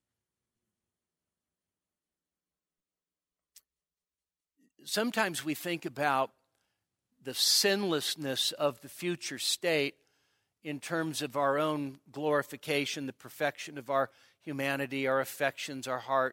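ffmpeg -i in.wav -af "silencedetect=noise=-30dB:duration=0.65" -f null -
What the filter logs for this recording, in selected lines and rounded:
silence_start: 0.00
silence_end: 4.88 | silence_duration: 4.88
silence_start: 6.25
silence_end: 7.27 | silence_duration: 1.03
silence_start: 9.88
silence_end: 10.67 | silence_duration: 0.78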